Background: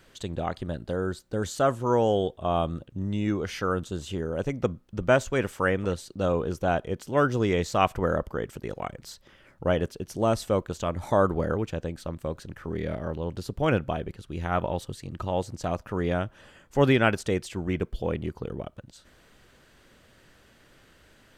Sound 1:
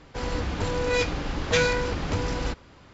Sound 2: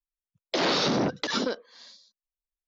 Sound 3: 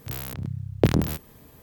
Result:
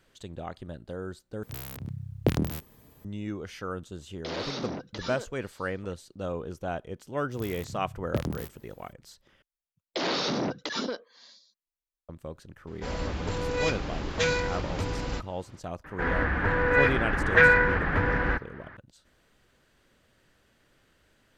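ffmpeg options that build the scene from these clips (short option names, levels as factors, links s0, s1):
-filter_complex "[3:a]asplit=2[s0][s1];[2:a]asplit=2[s2][s3];[1:a]asplit=2[s4][s5];[0:a]volume=0.398[s6];[s5]lowpass=f=1700:t=q:w=5.5[s7];[s6]asplit=3[s8][s9][s10];[s8]atrim=end=1.434[s11];[s0]atrim=end=1.62,asetpts=PTS-STARTPTS,volume=0.531[s12];[s9]atrim=start=3.046:end=9.424[s13];[s3]atrim=end=2.67,asetpts=PTS-STARTPTS,volume=0.631[s14];[s10]atrim=start=12.086[s15];[s2]atrim=end=2.67,asetpts=PTS-STARTPTS,volume=0.282,afade=t=in:d=0.004:c=hsin,afade=t=out:st=2.666:d=0.004:c=hsin,adelay=3710[s16];[s1]atrim=end=1.62,asetpts=PTS-STARTPTS,volume=0.299,afade=t=in:d=0.004:c=hsin,afade=t=out:st=1.616:d=0.004:c=hsin,adelay=7310[s17];[s4]atrim=end=2.93,asetpts=PTS-STARTPTS,volume=0.631,afade=t=in:d=0.004:c=hsin,afade=t=out:st=2.926:d=0.004:c=hsin,adelay=12670[s18];[s7]atrim=end=2.93,asetpts=PTS-STARTPTS,afade=t=in:d=0.004:c=hsin,afade=t=out:st=2.926:d=0.004:c=hsin,adelay=15840[s19];[s11][s12]acrossfade=d=0.004:c1=hsin:c2=hsin[s20];[s20][s13]acrossfade=d=0.004:c1=hsin:c2=hsin[s21];[s21][s14]acrossfade=d=0.004:c1=hsin:c2=hsin[s22];[s22][s15]acrossfade=d=0.004:c1=hsin:c2=hsin[s23];[s23][s16][s17][s18][s19]amix=inputs=5:normalize=0"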